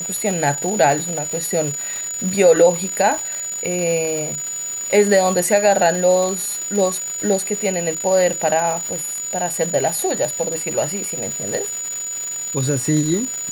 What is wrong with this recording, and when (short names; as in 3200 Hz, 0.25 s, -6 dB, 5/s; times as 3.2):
crackle 510/s -24 dBFS
tone 6900 Hz -24 dBFS